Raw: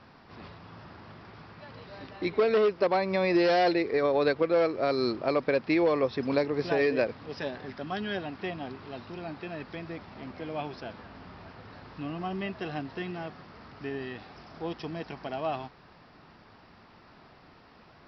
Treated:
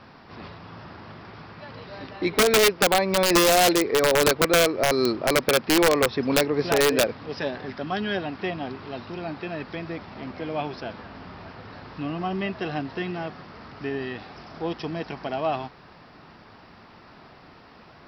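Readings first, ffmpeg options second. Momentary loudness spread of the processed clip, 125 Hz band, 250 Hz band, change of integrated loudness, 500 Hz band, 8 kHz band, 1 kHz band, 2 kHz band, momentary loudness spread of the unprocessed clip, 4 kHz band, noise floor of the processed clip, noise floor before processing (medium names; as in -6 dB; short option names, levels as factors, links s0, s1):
23 LU, +6.0 dB, +4.5 dB, +6.0 dB, +4.0 dB, no reading, +6.5 dB, +8.5 dB, 23 LU, +13.5 dB, -50 dBFS, -56 dBFS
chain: -af "lowshelf=f=76:g=-3,aeval=exprs='(mod(7.5*val(0)+1,2)-1)/7.5':c=same,aeval=exprs='0.133*(cos(1*acos(clip(val(0)/0.133,-1,1)))-cos(1*PI/2))+0.00188*(cos(5*acos(clip(val(0)/0.133,-1,1)))-cos(5*PI/2))':c=same,volume=1.88"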